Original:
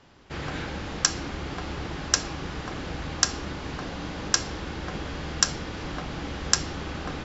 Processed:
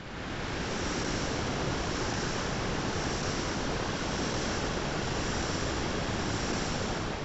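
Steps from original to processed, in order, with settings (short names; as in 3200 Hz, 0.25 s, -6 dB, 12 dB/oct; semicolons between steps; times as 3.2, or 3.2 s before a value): time blur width 0.709 s; in parallel at -2 dB: limiter -33 dBFS, peak gain reduction 11 dB; on the sum: delay with a stepping band-pass 0.415 s, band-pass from 450 Hz, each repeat 0.7 oct, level -1.5 dB; whisperiser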